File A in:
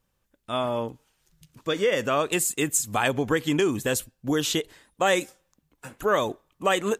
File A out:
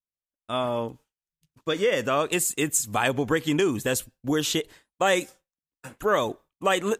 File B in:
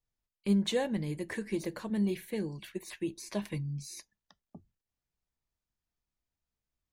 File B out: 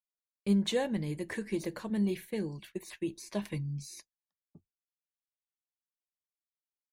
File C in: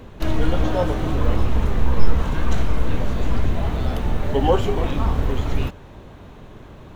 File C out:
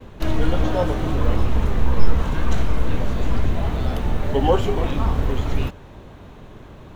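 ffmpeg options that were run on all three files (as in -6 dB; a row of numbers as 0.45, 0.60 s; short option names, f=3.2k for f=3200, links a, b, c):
-af "agate=range=-33dB:threshold=-42dB:ratio=3:detection=peak"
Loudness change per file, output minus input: 0.0, 0.0, 0.0 LU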